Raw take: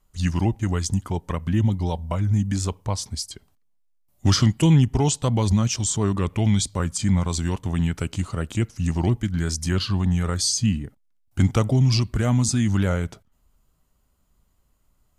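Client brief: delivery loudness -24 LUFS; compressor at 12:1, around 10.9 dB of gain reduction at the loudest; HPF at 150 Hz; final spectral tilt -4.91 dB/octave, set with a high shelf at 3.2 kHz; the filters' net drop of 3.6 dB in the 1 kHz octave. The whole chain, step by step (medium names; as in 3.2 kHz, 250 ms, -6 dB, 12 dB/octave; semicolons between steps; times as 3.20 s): high-pass 150 Hz; peaking EQ 1 kHz -4 dB; treble shelf 3.2 kHz -4.5 dB; compression 12:1, threshold -25 dBFS; trim +7.5 dB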